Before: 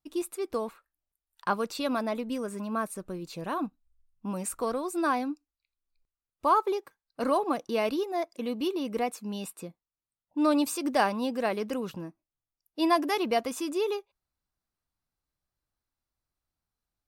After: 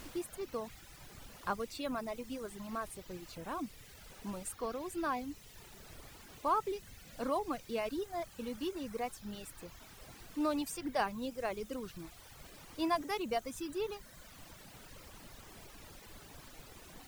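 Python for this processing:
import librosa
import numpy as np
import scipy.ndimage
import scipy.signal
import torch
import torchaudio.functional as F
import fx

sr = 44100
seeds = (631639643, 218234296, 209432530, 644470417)

y = fx.dmg_noise_colour(x, sr, seeds[0], colour='pink', level_db=-42.0)
y = fx.dereverb_blind(y, sr, rt60_s=1.2)
y = y * librosa.db_to_amplitude(-8.0)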